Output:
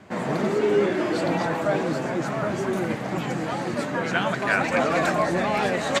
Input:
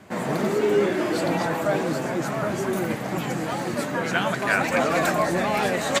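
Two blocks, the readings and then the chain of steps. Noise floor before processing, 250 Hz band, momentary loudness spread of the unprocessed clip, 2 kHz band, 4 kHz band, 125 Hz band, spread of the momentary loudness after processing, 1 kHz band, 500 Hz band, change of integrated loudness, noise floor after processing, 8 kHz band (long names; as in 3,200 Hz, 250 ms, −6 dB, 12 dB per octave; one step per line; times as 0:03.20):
−30 dBFS, 0.0 dB, 6 LU, −0.5 dB, −1.5 dB, 0.0 dB, 6 LU, 0.0 dB, 0.0 dB, −0.5 dB, −30 dBFS, −4.5 dB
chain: high-frequency loss of the air 52 metres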